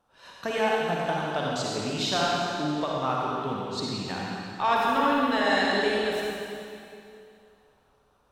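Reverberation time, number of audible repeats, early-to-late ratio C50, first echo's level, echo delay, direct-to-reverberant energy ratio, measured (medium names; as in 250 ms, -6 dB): 2.5 s, no echo, -4.0 dB, no echo, no echo, -4.5 dB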